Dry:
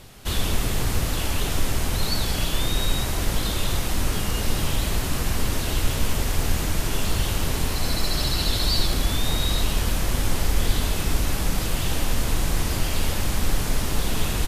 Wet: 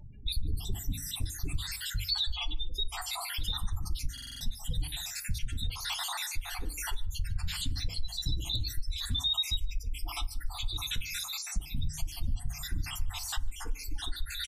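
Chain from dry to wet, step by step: random spectral dropouts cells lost 68%; dynamic EQ 3700 Hz, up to +8 dB, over -51 dBFS, Q 6.7; spectral gate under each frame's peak -15 dB strong; notches 50/100/150 Hz; on a send: echo 0.15 s -21 dB; on the sum: FDN reverb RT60 0.52 s, low-frequency decay 1.3×, high-frequency decay 0.45×, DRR 9.5 dB; compressor 6:1, threshold -27 dBFS, peak gain reduction 12 dB; hard clip -21 dBFS, distortion -43 dB; phaser stages 2, 0.27 Hz, lowest notch 140–1400 Hz; stuck buffer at 4.13, samples 2048, times 5

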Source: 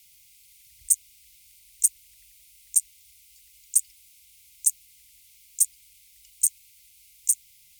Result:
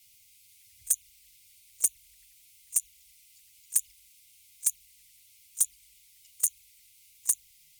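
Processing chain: envelope flanger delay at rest 11.3 ms, full sweep at -20 dBFS; pre-echo 36 ms -23 dB

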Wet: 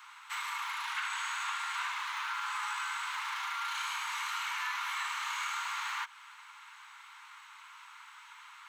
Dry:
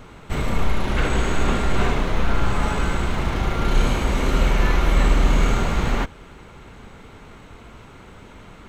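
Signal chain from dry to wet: steep high-pass 910 Hz 72 dB/oct; compressor 2.5:1, threshold -32 dBFS, peak gain reduction 6 dB; gain -2.5 dB

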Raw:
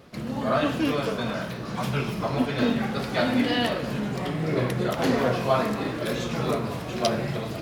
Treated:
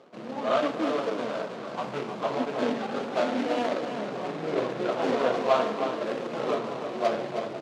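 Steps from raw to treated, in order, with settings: median filter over 25 samples; BPF 400–5700 Hz; echo 0.32 s -8.5 dB; gain +2 dB

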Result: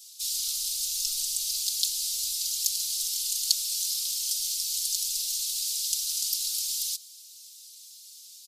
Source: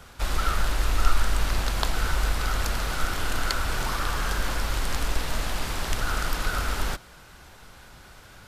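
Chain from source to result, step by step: inverse Chebyshev high-pass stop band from 1800 Hz, stop band 50 dB; comb 4.2 ms, depth 83%; gain +8.5 dB

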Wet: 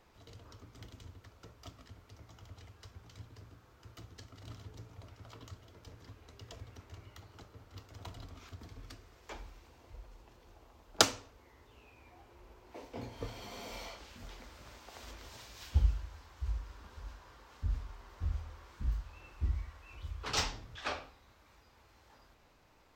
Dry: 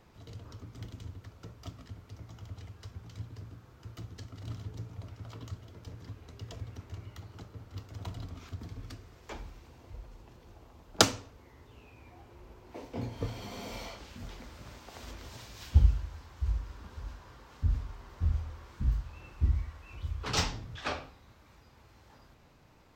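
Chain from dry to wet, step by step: bell 140 Hz -8.5 dB 2.1 oct; gain -2 dB

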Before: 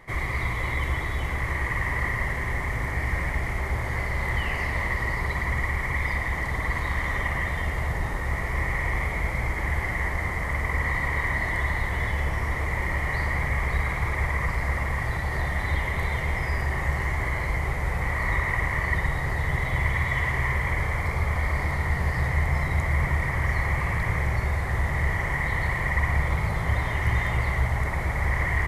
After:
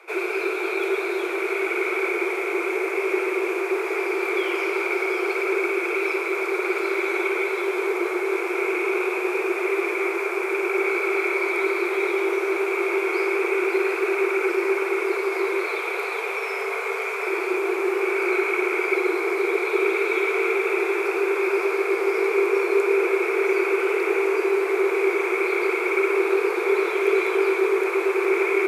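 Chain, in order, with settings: 15.62–17.26 HPF 93 Hz 24 dB/oct; frequency shift +320 Hz; on a send: split-band echo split 820 Hz, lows 0.342 s, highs 0.741 s, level -9.5 dB; on the sum: gain +1.5 dB

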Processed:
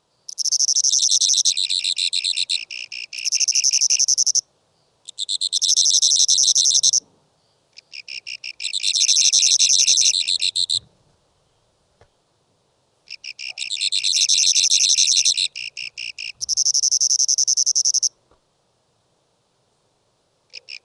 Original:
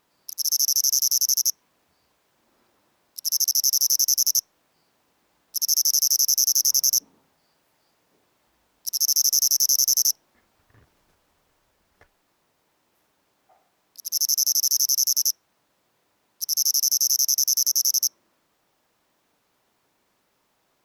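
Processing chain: echoes that change speed 0.315 s, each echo -7 st, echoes 2, each echo -6 dB; graphic EQ 125/250/500/2000/4000 Hz +9/-7/+5/-9/+5 dB; gain +2.5 dB; AAC 96 kbps 22050 Hz

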